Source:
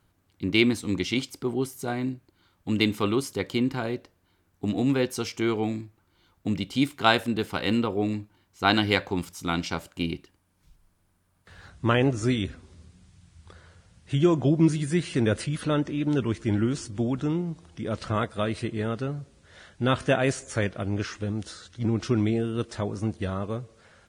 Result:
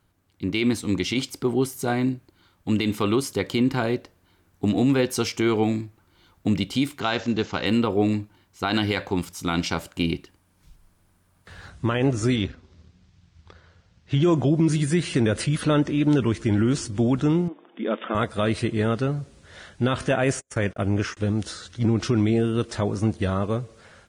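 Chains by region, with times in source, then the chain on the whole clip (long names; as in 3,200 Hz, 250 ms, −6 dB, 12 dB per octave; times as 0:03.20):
0:07.00–0:07.66: one scale factor per block 7 bits + bad sample-rate conversion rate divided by 3×, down none, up filtered
0:12.36–0:14.23: mu-law and A-law mismatch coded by A + low-pass filter 6,000 Hz 24 dB per octave
0:17.48–0:18.15: linear-phase brick-wall band-pass 200–3,700 Hz + one half of a high-frequency compander decoder only
0:20.11–0:21.17: parametric band 4,100 Hz −8 dB 0.43 octaves + noise gate −39 dBFS, range −41 dB
whole clip: automatic gain control gain up to 6 dB; brickwall limiter −12 dBFS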